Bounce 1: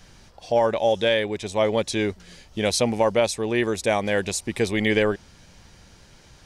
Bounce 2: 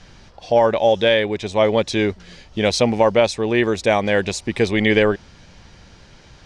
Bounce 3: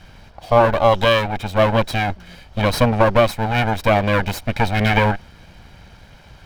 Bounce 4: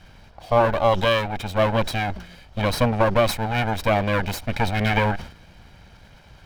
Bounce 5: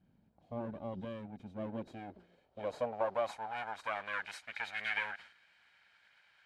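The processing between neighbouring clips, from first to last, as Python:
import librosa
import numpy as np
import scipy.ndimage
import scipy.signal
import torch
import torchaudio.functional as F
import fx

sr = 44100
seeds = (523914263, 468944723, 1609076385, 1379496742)

y1 = scipy.signal.sosfilt(scipy.signal.butter(2, 5300.0, 'lowpass', fs=sr, output='sos'), x)
y1 = y1 * 10.0 ** (5.0 / 20.0)
y2 = fx.lower_of_two(y1, sr, delay_ms=1.3)
y2 = fx.peak_eq(y2, sr, hz=6600.0, db=-8.5, octaves=1.3)
y2 = y2 * 10.0 ** (3.5 / 20.0)
y3 = fx.sustainer(y2, sr, db_per_s=110.0)
y3 = y3 * 10.0 ** (-4.5 / 20.0)
y4 = fx.freq_compress(y3, sr, knee_hz=3700.0, ratio=1.5)
y4 = librosa.effects.preemphasis(y4, coef=0.8, zi=[0.0])
y4 = fx.filter_sweep_bandpass(y4, sr, from_hz=220.0, to_hz=1800.0, start_s=1.42, end_s=4.41, q=1.9)
y4 = y4 * 10.0 ** (2.0 / 20.0)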